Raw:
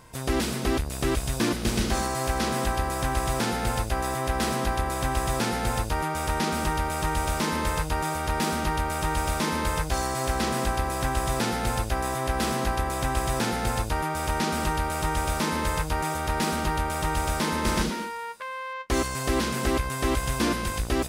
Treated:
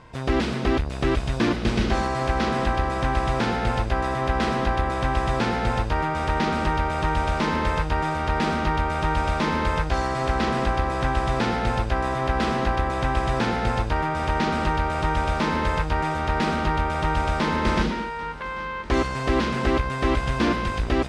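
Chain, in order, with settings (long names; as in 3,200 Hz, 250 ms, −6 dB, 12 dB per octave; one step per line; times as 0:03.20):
low-pass filter 3,500 Hz 12 dB per octave
echo machine with several playback heads 395 ms, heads second and third, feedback 61%, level −20.5 dB
level +3.5 dB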